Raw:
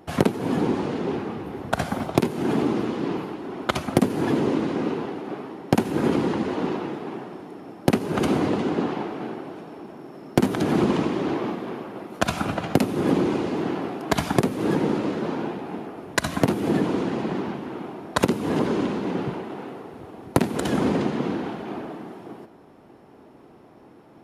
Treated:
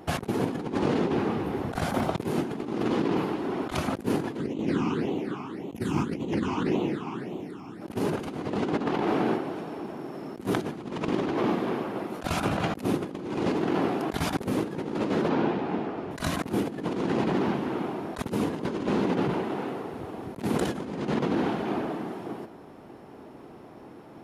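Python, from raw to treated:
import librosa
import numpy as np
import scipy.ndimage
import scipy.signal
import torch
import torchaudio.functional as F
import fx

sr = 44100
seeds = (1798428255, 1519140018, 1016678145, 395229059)

y = fx.phaser_stages(x, sr, stages=8, low_hz=510.0, high_hz=1600.0, hz=1.8, feedback_pct=25, at=(4.39, 7.8), fade=0.02)
y = fx.over_compress(y, sr, threshold_db=-28.0, ratio=-0.5, at=(8.53, 9.36), fade=0.02)
y = fx.lowpass(y, sr, hz=4900.0, slope=12, at=(15.29, 16.11))
y = fx.over_compress(y, sr, threshold_db=-27.0, ratio=-0.5)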